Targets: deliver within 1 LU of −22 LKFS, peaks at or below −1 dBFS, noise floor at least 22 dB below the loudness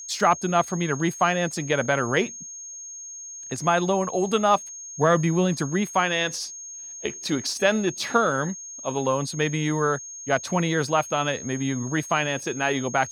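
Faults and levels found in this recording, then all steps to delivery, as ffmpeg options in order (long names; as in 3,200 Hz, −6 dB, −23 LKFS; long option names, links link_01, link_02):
interfering tone 6,500 Hz; level of the tone −36 dBFS; integrated loudness −24.0 LKFS; sample peak −6.5 dBFS; target loudness −22.0 LKFS
→ -af "bandreject=frequency=6500:width=30"
-af "volume=2dB"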